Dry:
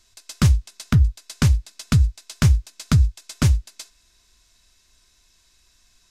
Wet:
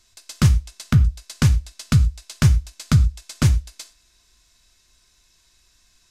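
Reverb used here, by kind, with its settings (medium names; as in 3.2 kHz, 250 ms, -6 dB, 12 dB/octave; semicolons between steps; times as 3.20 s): gated-style reverb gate 140 ms falling, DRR 10.5 dB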